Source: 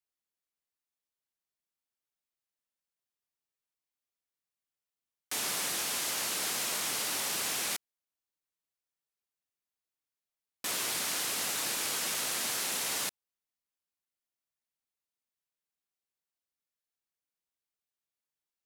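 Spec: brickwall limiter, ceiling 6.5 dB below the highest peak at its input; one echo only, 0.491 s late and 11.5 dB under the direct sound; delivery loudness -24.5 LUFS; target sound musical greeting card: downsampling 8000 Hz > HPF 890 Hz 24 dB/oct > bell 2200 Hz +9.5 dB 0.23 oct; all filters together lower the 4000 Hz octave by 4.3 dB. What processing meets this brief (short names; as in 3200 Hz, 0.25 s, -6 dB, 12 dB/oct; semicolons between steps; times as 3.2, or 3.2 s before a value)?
bell 4000 Hz -6 dB; limiter -28.5 dBFS; echo 0.491 s -11.5 dB; downsampling 8000 Hz; HPF 890 Hz 24 dB/oct; bell 2200 Hz +9.5 dB 0.23 oct; gain +16 dB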